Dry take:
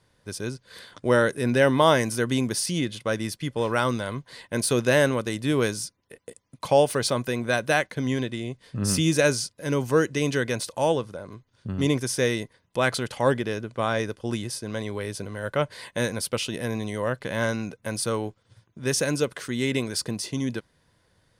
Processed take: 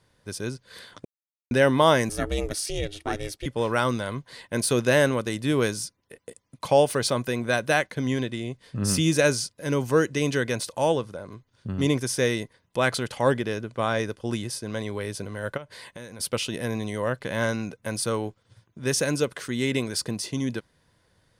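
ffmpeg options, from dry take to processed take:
-filter_complex "[0:a]asettb=1/sr,asplit=3[s0][s1][s2];[s0]atrim=end=2.094[s3];[s1]atrim=start=2.09:end=3.46,asetpts=PTS-STARTPTS,afade=t=in:d=0.004:c=qsin,afade=t=out:st=1.366:d=0.004:c=qsin,aeval=exprs='val(0)*sin(2*PI*200*n/s)':c=same[s4];[s2]atrim=start=3.456[s5];[s3][s4]acrossfade=d=0.004:c1=hsin:c2=qsin[s6];[s6][s5]acrossfade=d=0.004:c1=qsin:c2=hsin,asplit=3[s7][s8][s9];[s7]afade=t=out:st=15.56:d=0.02[s10];[s8]acompressor=threshold=0.0112:ratio=4:attack=3.2:release=140:knee=1:detection=peak,afade=t=in:st=15.56:d=0.02,afade=t=out:st=16.19:d=0.02[s11];[s9]afade=t=in:st=16.19:d=0.02[s12];[s10][s11][s12]amix=inputs=3:normalize=0,asplit=3[s13][s14][s15];[s13]atrim=end=1.05,asetpts=PTS-STARTPTS,afade=t=out:st=1.046:d=0.004:c=hsin[s16];[s14]atrim=start=1.05:end=1.51,asetpts=PTS-STARTPTS,volume=0[s17];[s15]atrim=start=1.51,asetpts=PTS-STARTPTS,afade=t=in:d=0.004:c=hsin[s18];[s16][s17][s18]concat=n=3:v=0:a=1"

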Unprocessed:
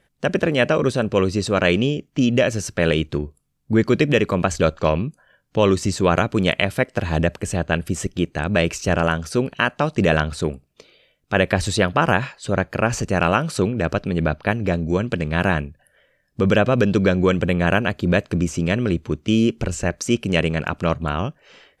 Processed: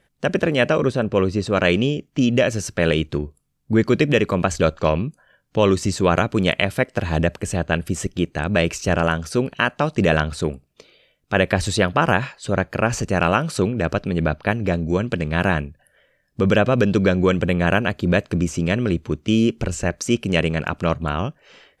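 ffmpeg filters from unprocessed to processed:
-filter_complex "[0:a]asettb=1/sr,asplit=3[s0][s1][s2];[s0]atrim=end=0.854[s3];[s1]atrim=start=0.85:end=1.53,asetpts=PTS-STARTPTS,afade=t=in:d=0.004:c=qsin,afade=t=out:st=0.676:d=0.004:c=qsin,highshelf=f=3800:g=-9[s4];[s2]atrim=start=1.526[s5];[s3][s4]acrossfade=d=0.004:c1=hsin:c2=qsin[s6];[s6][s5]acrossfade=d=0.004:c1=qsin:c2=hsin"

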